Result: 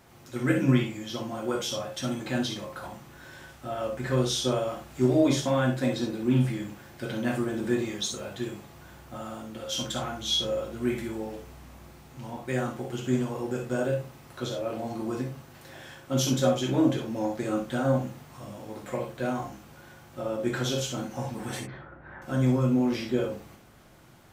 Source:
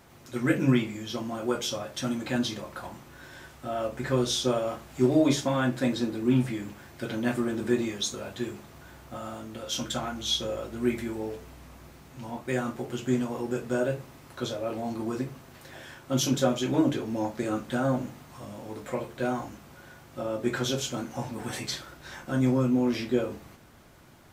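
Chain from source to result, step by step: 21.60–22.22 s: low-pass 1.8 kHz 24 dB/octave; gated-style reverb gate 80 ms rising, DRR 5 dB; trim -1.5 dB

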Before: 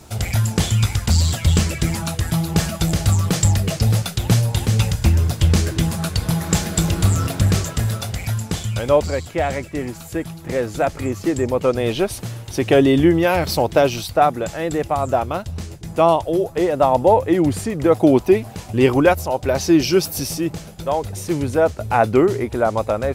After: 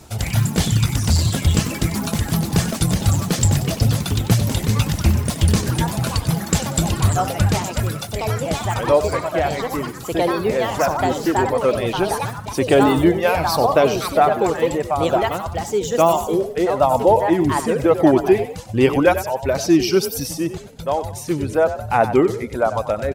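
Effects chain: reverb removal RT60 1.1 s; frequency-shifting echo 94 ms, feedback 37%, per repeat +37 Hz, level -11.5 dB; ever faster or slower copies 101 ms, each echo +4 st, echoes 3, each echo -6 dB

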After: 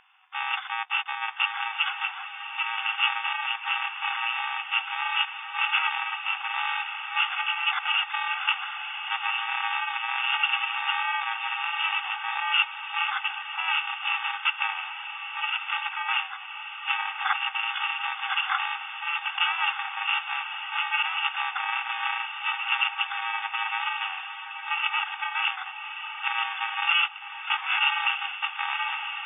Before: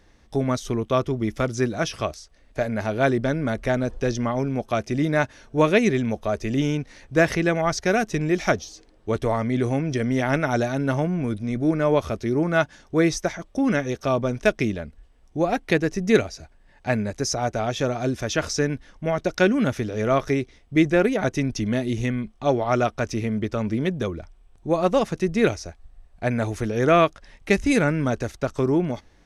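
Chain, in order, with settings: bit-reversed sample order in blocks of 128 samples; sine folder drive 6 dB, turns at -4.5 dBFS; FFT band-pass 750–3600 Hz; on a send: echo that smears into a reverb 1173 ms, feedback 44%, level -8 dB

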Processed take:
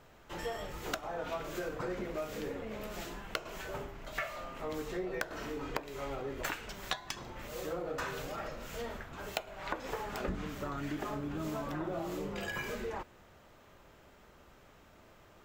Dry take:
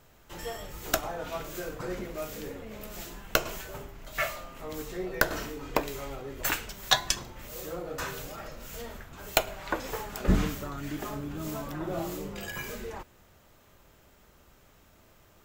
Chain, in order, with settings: tracing distortion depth 0.05 ms; low-pass 2.8 kHz 6 dB/octave; bass shelf 190 Hz -6 dB; compression 16:1, threshold -36 dBFS, peak gain reduction 18 dB; trim +3 dB

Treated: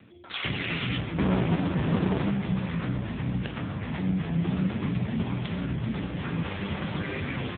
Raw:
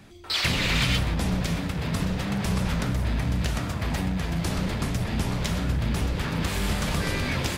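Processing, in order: 1.18–2.30 s: square wave that keeps the level; 4.05–5.23 s: dynamic bell 190 Hz, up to +4 dB, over -39 dBFS, Q 1.9; on a send: feedback delay 89 ms, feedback 48%, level -19.5 dB; on the sum: AMR-NB 5.9 kbps 8 kHz

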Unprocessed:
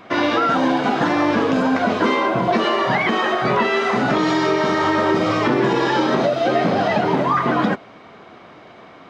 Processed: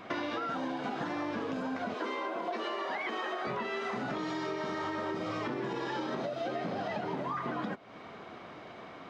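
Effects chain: 1.94–3.47 s: high-pass 280 Hz 24 dB/octave; compression 6:1, threshold -29 dBFS, peak gain reduction 14.5 dB; trim -4.5 dB

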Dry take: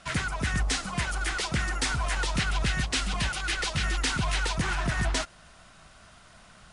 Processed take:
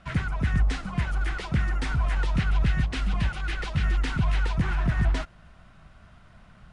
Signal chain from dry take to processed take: tone controls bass +9 dB, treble -14 dB; trim -3 dB

